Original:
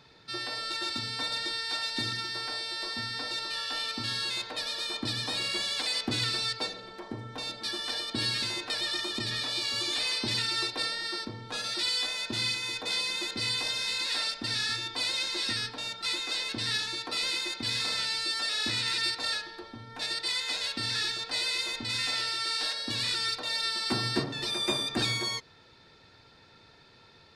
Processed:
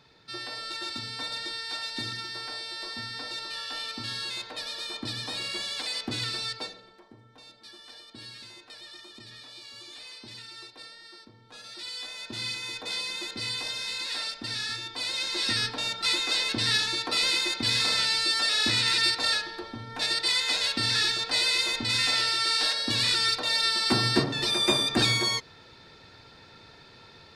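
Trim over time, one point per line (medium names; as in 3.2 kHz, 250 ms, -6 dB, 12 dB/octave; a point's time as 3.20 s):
6.57 s -2 dB
7.12 s -14.5 dB
11.32 s -14.5 dB
12.59 s -2 dB
14.99 s -2 dB
15.64 s +5.5 dB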